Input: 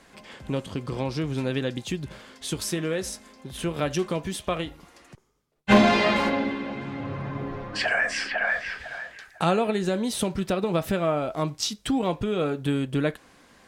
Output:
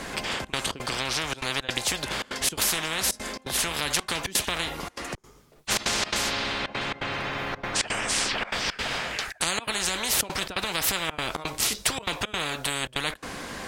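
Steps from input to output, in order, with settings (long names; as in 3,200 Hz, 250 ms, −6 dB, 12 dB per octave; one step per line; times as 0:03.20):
gate pattern "xxxxx.xx.x" 169 BPM −24 dB
every bin compressed towards the loudest bin 10 to 1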